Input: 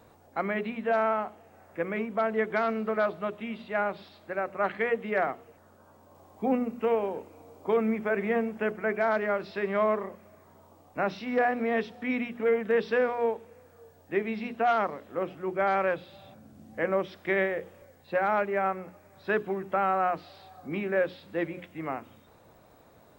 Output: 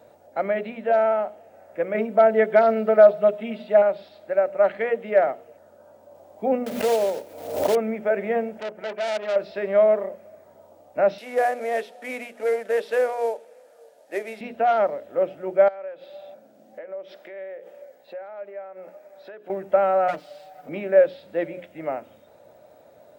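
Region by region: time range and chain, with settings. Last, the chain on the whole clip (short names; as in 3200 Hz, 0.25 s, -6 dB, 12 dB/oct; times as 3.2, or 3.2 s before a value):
1.94–3.82 notch 6200 Hz, Q 26 + comb 4.6 ms, depth 98%
6.66–7.76 block floating point 3-bit + backwards sustainer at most 64 dB/s
8.6–9.36 transient shaper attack -3 dB, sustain -7 dB + upward compressor, threshold -34 dBFS + core saturation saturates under 3200 Hz
11.18–14.41 CVSD 64 kbps + HPF 400 Hz
15.68–19.5 HPF 280 Hz + bell 9500 Hz -3.5 dB 1 oct + compressor 8:1, threshold -42 dBFS
20.08–20.69 minimum comb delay 6.5 ms + low shelf 120 Hz -6.5 dB + comb 6.9 ms, depth 45%
whole clip: HPF 150 Hz 6 dB/oct; bell 590 Hz +14.5 dB 0.43 oct; notch 1100 Hz, Q 6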